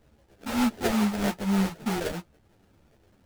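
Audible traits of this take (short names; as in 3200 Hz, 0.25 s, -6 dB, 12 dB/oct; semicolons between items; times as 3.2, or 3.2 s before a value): phasing stages 8, 3.3 Hz, lowest notch 350–1000 Hz; aliases and images of a low sample rate 1100 Hz, jitter 20%; a shimmering, thickened sound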